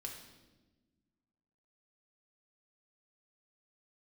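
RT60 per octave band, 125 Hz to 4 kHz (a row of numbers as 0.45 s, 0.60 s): 1.9 s, 2.0 s, 1.4 s, 1.0 s, 0.95 s, 1.0 s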